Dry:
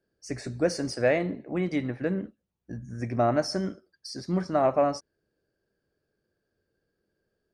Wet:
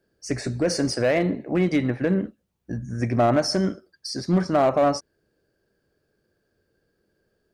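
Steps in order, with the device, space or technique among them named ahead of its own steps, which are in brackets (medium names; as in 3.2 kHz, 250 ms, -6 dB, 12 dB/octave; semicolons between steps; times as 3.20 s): limiter into clipper (peak limiter -18.5 dBFS, peak gain reduction 6.5 dB; hard clipper -21 dBFS, distortion -23 dB); trim +7.5 dB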